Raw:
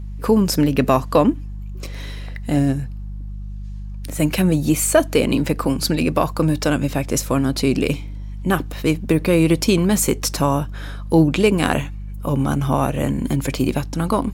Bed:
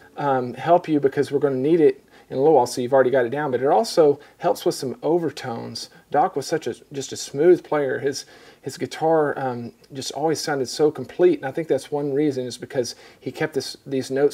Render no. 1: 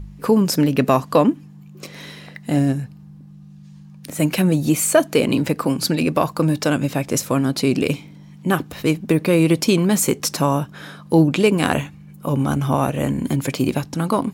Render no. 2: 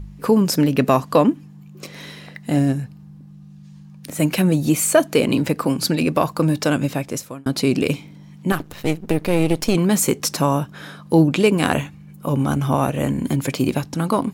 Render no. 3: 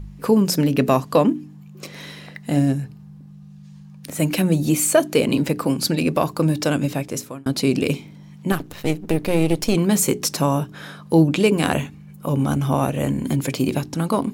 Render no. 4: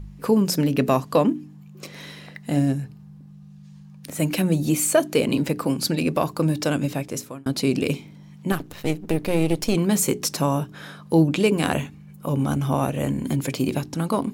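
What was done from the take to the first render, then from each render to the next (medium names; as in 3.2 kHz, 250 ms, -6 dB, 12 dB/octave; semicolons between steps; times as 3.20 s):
de-hum 50 Hz, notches 2
6.86–7.46 s: fade out; 8.52–9.75 s: partial rectifier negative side -12 dB
hum notches 60/120/180/240/300/360/420 Hz; dynamic bell 1.3 kHz, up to -3 dB, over -34 dBFS, Q 0.84
trim -2.5 dB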